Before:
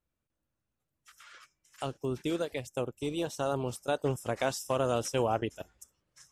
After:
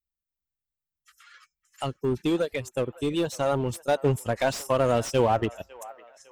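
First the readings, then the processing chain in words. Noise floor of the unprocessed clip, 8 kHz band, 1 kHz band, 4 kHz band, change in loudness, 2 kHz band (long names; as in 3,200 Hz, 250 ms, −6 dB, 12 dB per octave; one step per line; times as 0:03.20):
−85 dBFS, +3.0 dB, +6.5 dB, +4.5 dB, +6.5 dB, +5.5 dB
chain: spectral dynamics exaggerated over time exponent 1.5
in parallel at −9 dB: wave folding −35 dBFS
on the sum: delay with a band-pass on its return 554 ms, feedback 43%, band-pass 1,200 Hz, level −18 dB
slew-rate limiting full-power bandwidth 50 Hz
level +8.5 dB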